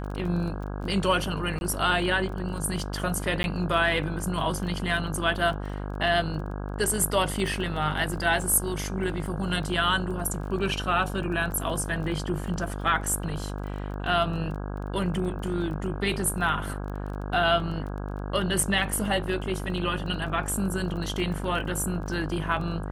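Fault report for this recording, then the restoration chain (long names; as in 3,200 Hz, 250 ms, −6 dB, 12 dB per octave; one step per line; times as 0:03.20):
mains buzz 50 Hz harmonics 33 −33 dBFS
surface crackle 20 per second −35 dBFS
0:01.59–0:01.61: drop-out 21 ms
0:03.43–0:03.44: drop-out 11 ms
0:07.47: drop-out 2.8 ms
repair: click removal
hum removal 50 Hz, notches 33
repair the gap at 0:01.59, 21 ms
repair the gap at 0:03.43, 11 ms
repair the gap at 0:07.47, 2.8 ms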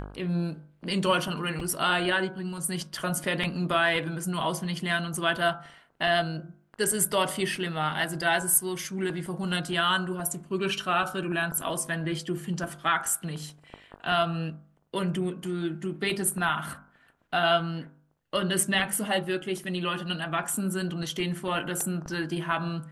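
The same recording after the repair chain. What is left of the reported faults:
none of them is left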